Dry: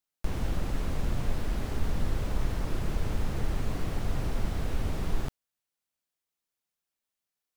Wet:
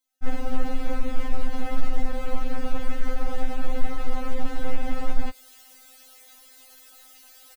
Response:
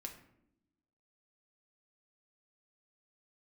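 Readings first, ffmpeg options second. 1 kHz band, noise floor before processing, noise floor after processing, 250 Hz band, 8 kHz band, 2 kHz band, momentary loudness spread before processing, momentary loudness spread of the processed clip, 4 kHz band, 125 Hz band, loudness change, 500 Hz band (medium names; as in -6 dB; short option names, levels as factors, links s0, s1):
+6.5 dB, under -85 dBFS, -51 dBFS, +3.5 dB, 0.0 dB, +4.0 dB, 1 LU, 14 LU, +1.0 dB, -4.5 dB, 0.0 dB, +4.5 dB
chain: -filter_complex "[0:a]acrossover=split=2900[s0][s1];[s1]acompressor=threshold=0.00141:ratio=4:attack=1:release=60[s2];[s0][s2]amix=inputs=2:normalize=0,aecho=1:1:2.4:0.34,areverse,acompressor=mode=upward:threshold=0.0282:ratio=2.5,areverse,volume=12.6,asoftclip=hard,volume=0.0794,afftfilt=real='re*3.46*eq(mod(b,12),0)':imag='im*3.46*eq(mod(b,12),0)':win_size=2048:overlap=0.75,volume=2.51"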